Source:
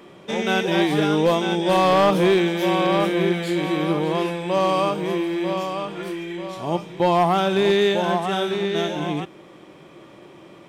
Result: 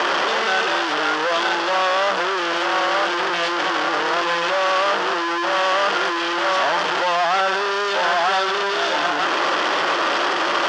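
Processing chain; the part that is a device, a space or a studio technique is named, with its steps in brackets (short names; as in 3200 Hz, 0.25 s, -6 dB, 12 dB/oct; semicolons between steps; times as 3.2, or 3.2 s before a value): home computer beeper (infinite clipping; speaker cabinet 750–4500 Hz, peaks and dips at 1400 Hz +3 dB, 2300 Hz -8 dB, 3900 Hz -8 dB); gain +7.5 dB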